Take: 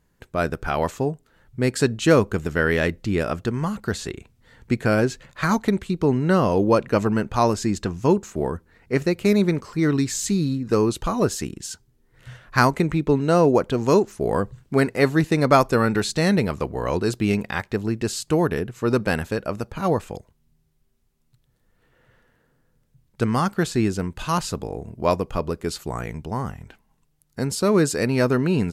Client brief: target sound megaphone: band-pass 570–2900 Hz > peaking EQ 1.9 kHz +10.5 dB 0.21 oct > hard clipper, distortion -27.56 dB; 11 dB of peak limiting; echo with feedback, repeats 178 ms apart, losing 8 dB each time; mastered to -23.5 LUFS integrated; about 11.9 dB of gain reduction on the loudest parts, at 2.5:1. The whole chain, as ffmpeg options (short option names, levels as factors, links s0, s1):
-af "acompressor=threshold=0.0316:ratio=2.5,alimiter=limit=0.0668:level=0:latency=1,highpass=570,lowpass=2900,equalizer=f=1900:t=o:w=0.21:g=10.5,aecho=1:1:178|356|534|712|890:0.398|0.159|0.0637|0.0255|0.0102,asoftclip=type=hard:threshold=0.0531,volume=5.96"